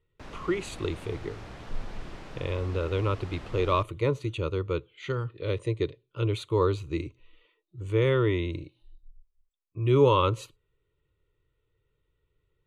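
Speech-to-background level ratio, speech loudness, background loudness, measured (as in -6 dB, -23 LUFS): 16.5 dB, -28.5 LUFS, -45.0 LUFS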